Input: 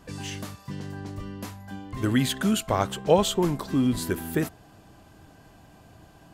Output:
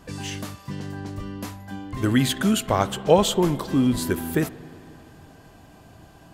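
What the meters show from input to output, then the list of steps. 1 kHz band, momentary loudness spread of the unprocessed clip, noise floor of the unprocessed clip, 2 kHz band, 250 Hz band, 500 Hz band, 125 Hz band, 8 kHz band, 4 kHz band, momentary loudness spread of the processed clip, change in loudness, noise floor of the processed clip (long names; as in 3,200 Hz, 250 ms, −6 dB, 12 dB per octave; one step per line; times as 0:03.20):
+3.0 dB, 16 LU, −53 dBFS, +3.0 dB, +3.0 dB, +3.0 dB, +3.0 dB, +3.0 dB, +3.0 dB, 16 LU, +3.0 dB, −50 dBFS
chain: spring reverb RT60 3.2 s, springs 44/58 ms, chirp 30 ms, DRR 17 dB
level +3 dB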